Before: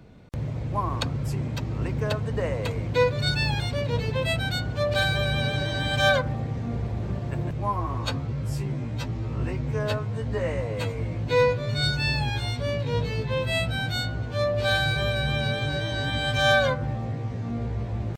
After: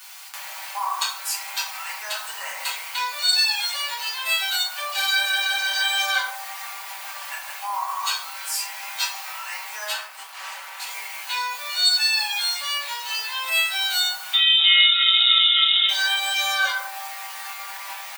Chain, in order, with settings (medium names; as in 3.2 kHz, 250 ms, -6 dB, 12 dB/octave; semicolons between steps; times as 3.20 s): gain riding within 4 dB 2 s; dynamic bell 2.5 kHz, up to -5 dB, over -40 dBFS, Q 0.73; bit crusher 9-bit; 9.93–10.87 s: valve stage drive 37 dB, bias 0.6; 14.33–15.89 s: frequency inversion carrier 3.7 kHz; peak limiter -20 dBFS, peak gain reduction 8.5 dB; steep high-pass 830 Hz 36 dB/octave; tilt EQ +3.5 dB/octave; comb 5.2 ms, depth 42%; reverberation RT60 0.50 s, pre-delay 5 ms, DRR -6 dB; trim +1.5 dB